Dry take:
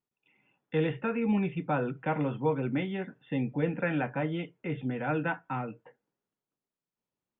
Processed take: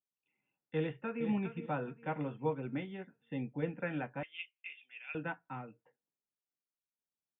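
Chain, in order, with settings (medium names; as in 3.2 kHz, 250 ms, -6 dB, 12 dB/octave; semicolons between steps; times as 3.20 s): 0.79–1.25 s: echo throw 410 ms, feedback 45%, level -8 dB; 4.23–5.15 s: resonant high-pass 2.6 kHz, resonance Q 6.4; upward expansion 1.5:1, over -43 dBFS; trim -5.5 dB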